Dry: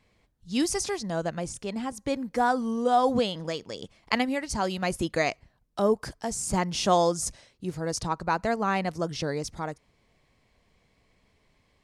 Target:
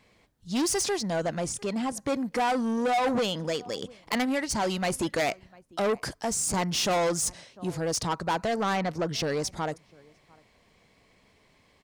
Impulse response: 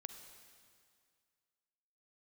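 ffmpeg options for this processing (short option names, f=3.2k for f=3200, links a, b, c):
-filter_complex "[0:a]asettb=1/sr,asplit=3[a][b][c];[a]atrim=end=8.734[d];[b]atrim=start=8.73:end=9.14,asetpts=PTS-STARTPTS,afade=t=in:d=0.004:c=qsin,afade=t=out:st=0.406:d=0.004:c=qsin,equalizer=f=9.4k:w=0.73:g=-12[e];[c]atrim=start=9.136[f];[d][e]acrossfade=d=0.004:c1=hsin:c2=qsin[g];[g][f]acrossfade=d=0.004:c1=qsin:c2=hsin,asplit=2[h][i];[i]adelay=699.7,volume=-30dB,highshelf=f=4k:g=-15.7[j];[h][j]amix=inputs=2:normalize=0,asoftclip=type=tanh:threshold=-28dB,lowshelf=f=88:g=-11,volume=6dB"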